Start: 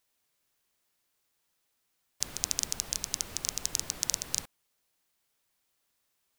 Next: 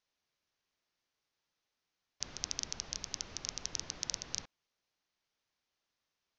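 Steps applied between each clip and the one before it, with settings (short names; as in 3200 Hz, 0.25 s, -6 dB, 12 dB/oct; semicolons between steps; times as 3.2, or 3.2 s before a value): steep low-pass 6400 Hz 72 dB/oct; gain -5 dB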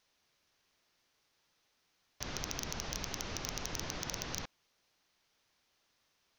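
in parallel at +3 dB: limiter -22.5 dBFS, peak gain reduction 8 dB; on the sum: soft clip -27 dBFS, distortion -3 dB; gain +2.5 dB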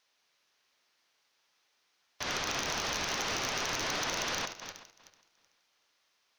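regenerating reverse delay 0.189 s, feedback 50%, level -8 dB; overdrive pedal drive 19 dB, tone 6900 Hz, clips at -21 dBFS; upward expander 1.5:1, over -53 dBFS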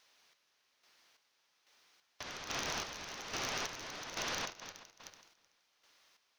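compressor 6:1, threshold -42 dBFS, peak gain reduction 11 dB; chopper 1.2 Hz, depth 60%, duty 40%; gain +6 dB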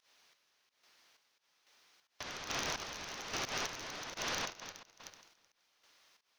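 pump 87 bpm, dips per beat 1, -17 dB, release 0.135 s; gain +1 dB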